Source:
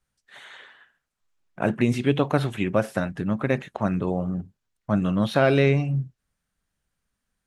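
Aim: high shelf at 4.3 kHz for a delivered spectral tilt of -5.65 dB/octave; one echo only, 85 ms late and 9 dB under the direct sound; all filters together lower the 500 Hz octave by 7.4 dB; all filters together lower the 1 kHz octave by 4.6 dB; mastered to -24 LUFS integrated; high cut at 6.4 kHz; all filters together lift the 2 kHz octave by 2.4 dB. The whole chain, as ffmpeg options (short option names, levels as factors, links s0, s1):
-af "lowpass=6400,equalizer=f=500:t=o:g=-8.5,equalizer=f=1000:t=o:g=-5,equalizer=f=2000:t=o:g=4.5,highshelf=f=4300:g=4.5,aecho=1:1:85:0.355,volume=1.19"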